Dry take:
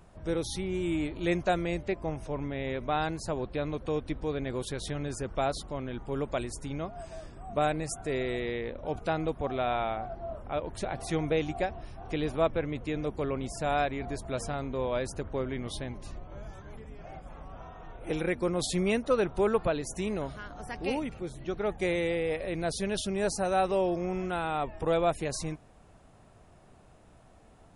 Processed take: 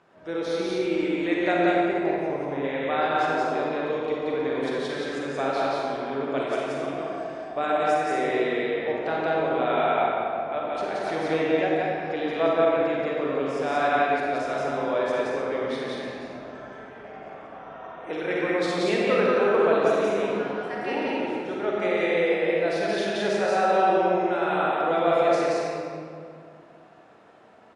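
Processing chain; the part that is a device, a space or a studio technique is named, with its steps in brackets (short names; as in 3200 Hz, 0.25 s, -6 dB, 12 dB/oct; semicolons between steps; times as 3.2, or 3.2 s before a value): station announcement (BPF 300–4200 Hz; bell 1600 Hz +4 dB 0.48 oct; loudspeakers at several distances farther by 61 m -1 dB, 76 m -9 dB; reverb RT60 2.3 s, pre-delay 36 ms, DRR -3 dB); 1.85–2.64 bell 3000 Hz -4.5 dB 1.9 oct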